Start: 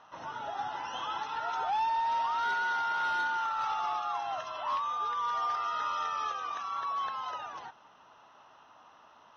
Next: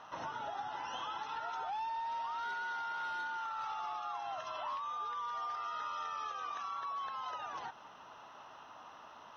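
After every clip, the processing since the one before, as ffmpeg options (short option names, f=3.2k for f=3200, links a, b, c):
-af "acompressor=threshold=-43dB:ratio=5,volume=4dB"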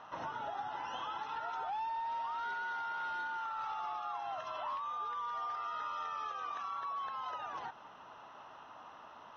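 -af "highshelf=f=5.1k:g=-11,volume=1dB"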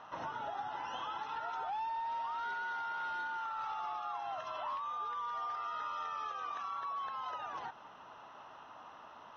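-af anull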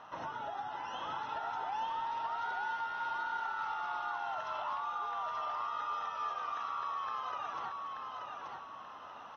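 -af "aecho=1:1:882|1764|2646|3528|4410:0.668|0.261|0.102|0.0396|0.0155"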